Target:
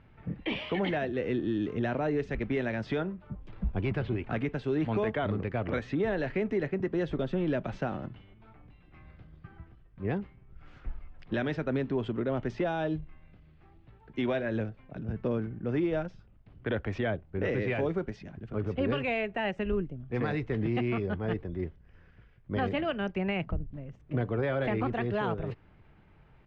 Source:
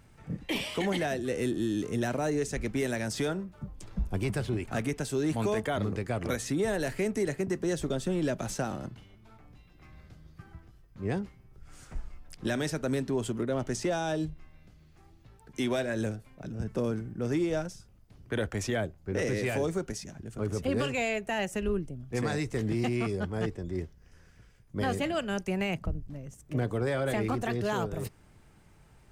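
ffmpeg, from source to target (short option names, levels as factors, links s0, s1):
-af "lowpass=f=3200:w=0.5412,lowpass=f=3200:w=1.3066,atempo=1.1"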